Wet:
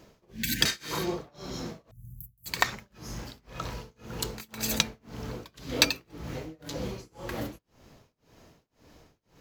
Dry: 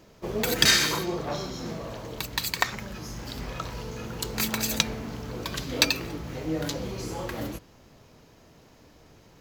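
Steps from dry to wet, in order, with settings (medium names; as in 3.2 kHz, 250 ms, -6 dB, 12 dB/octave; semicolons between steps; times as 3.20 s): 1.91–2.46 s: inverse Chebyshev band-stop 540–3400 Hz, stop band 70 dB; tremolo 1.9 Hz, depth 98%; 0.33–0.59 s: spectral replace 320–1500 Hz before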